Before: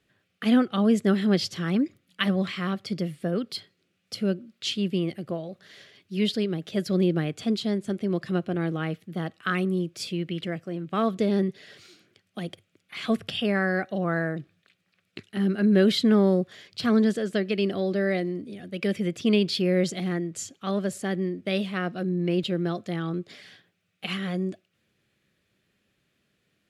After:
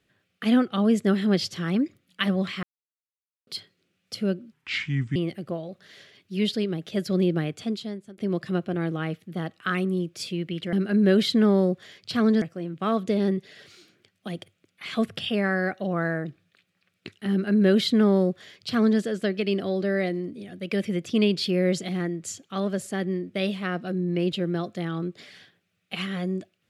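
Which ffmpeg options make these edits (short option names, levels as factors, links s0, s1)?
-filter_complex "[0:a]asplit=8[s0][s1][s2][s3][s4][s5][s6][s7];[s0]atrim=end=2.63,asetpts=PTS-STARTPTS,afade=t=out:st=2.626:d=0.004:c=hsin[s8];[s1]atrim=start=2.63:end=3.47,asetpts=PTS-STARTPTS,volume=0[s9];[s2]atrim=start=3.47:end=4.524,asetpts=PTS-STARTPTS,afade=t=in:d=0.004:c=hsin[s10];[s3]atrim=start=4.52:end=4.96,asetpts=PTS-STARTPTS,asetrate=30429,aresample=44100[s11];[s4]atrim=start=4.956:end=7.98,asetpts=PTS-STARTPTS,afade=t=out:st=2.314:d=0.71:silence=0.0749894[s12];[s5]atrim=start=7.98:end=10.532,asetpts=PTS-STARTPTS,afade=t=in:d=0.004:c=hsin:silence=0.0749894[s13];[s6]atrim=start=15.418:end=17.112[s14];[s7]atrim=start=10.528[s15];[s8][s9][s10]concat=n=3:v=0:a=1[s16];[s16][s11]acrossfade=d=0.004:c1=hsin:c2=hsin[s17];[s12][s13]concat=n=2:v=0:a=1[s18];[s17][s18]acrossfade=d=0.004:c1=hsin:c2=hsin[s19];[s19][s14]acrossfade=d=0.004:c1=hsin:c2=hsin[s20];[s20][s15]acrossfade=d=0.004:c1=hsin:c2=hsin"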